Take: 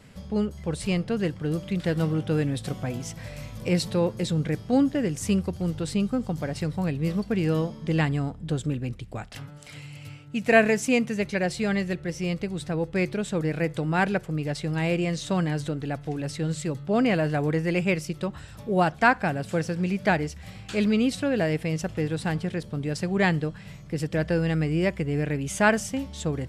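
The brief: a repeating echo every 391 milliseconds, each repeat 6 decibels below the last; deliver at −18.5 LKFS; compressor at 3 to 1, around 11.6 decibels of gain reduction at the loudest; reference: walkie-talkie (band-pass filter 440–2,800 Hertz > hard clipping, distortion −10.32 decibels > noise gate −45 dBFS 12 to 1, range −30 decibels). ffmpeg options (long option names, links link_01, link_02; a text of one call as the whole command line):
ffmpeg -i in.wav -af "acompressor=threshold=-29dB:ratio=3,highpass=440,lowpass=2800,aecho=1:1:391|782|1173|1564|1955|2346:0.501|0.251|0.125|0.0626|0.0313|0.0157,asoftclip=type=hard:threshold=-31.5dB,agate=range=-30dB:threshold=-45dB:ratio=12,volume=20.5dB" out.wav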